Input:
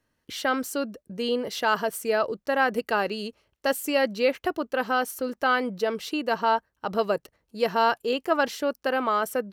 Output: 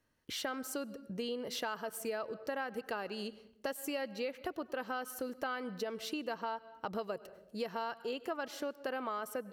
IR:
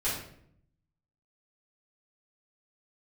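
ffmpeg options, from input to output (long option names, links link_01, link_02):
-filter_complex "[0:a]asplit=2[link_01][link_02];[1:a]atrim=start_sample=2205,adelay=93[link_03];[link_02][link_03]afir=irnorm=-1:irlink=0,volume=-28dB[link_04];[link_01][link_04]amix=inputs=2:normalize=0,acompressor=threshold=-32dB:ratio=6,volume=-3.5dB"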